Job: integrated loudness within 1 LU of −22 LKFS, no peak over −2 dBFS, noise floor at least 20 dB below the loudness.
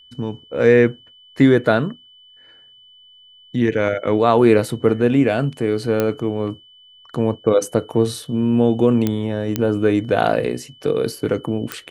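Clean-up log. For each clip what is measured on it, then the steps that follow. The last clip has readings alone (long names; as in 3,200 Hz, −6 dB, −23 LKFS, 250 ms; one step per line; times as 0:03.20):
number of clicks 4; interfering tone 3,000 Hz; level of the tone −46 dBFS; integrated loudness −18.5 LKFS; sample peak −1.5 dBFS; target loudness −22.0 LKFS
→ click removal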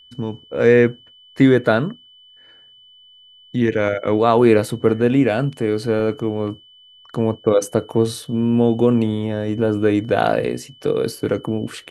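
number of clicks 0; interfering tone 3,000 Hz; level of the tone −46 dBFS
→ notch filter 3,000 Hz, Q 30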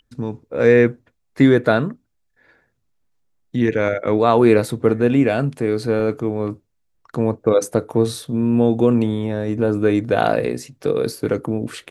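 interfering tone none found; integrated loudness −18.5 LKFS; sample peak −1.5 dBFS; target loudness −22.0 LKFS
→ level −3.5 dB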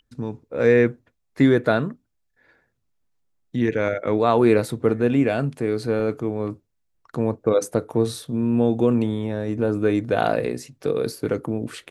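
integrated loudness −22.0 LKFS; sample peak −5.0 dBFS; background noise floor −73 dBFS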